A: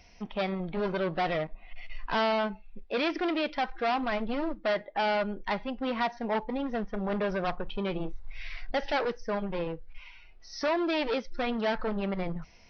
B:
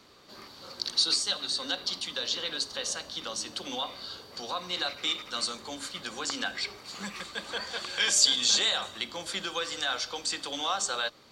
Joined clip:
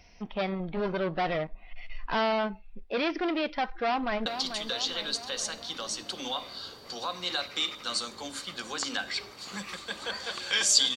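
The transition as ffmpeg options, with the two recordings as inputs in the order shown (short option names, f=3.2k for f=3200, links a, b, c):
-filter_complex "[0:a]apad=whole_dur=10.96,atrim=end=10.96,atrim=end=4.262[a];[1:a]atrim=start=1.728:end=8.43[b];[a][b]acrossfade=d=0.004:c1=hsin:c2=hsin,asplit=2[c][d];[d]afade=t=in:st=3.71:d=0.01,afade=t=out:st=4.26:d=0.01,aecho=0:1:440|880|1320|1760|2200|2640:0.354813|0.195147|0.107331|0.0590321|0.0324676|0.0178572[e];[c][e]amix=inputs=2:normalize=0"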